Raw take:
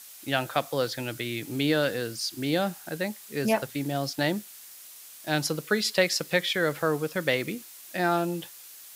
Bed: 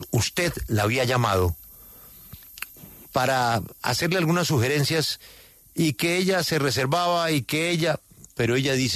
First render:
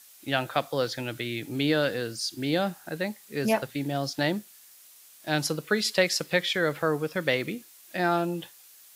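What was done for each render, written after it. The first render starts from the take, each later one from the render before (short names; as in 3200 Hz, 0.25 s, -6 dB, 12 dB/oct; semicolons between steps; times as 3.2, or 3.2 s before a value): noise print and reduce 6 dB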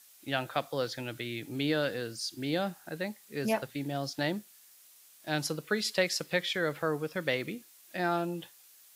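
gain -5 dB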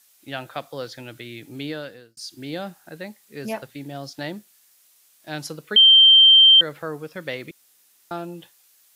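1.62–2.17 fade out; 5.76–6.61 bleep 3140 Hz -8 dBFS; 7.51–8.11 room tone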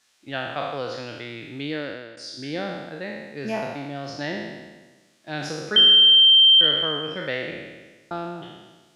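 spectral trails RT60 1.32 s; air absorption 100 m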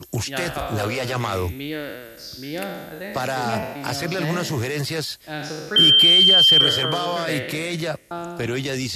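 add bed -3 dB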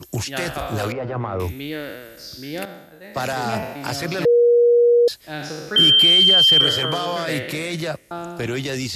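0.92–1.4 LPF 1100 Hz; 2.65–3.33 three-band expander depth 100%; 4.25–5.08 bleep 477 Hz -10.5 dBFS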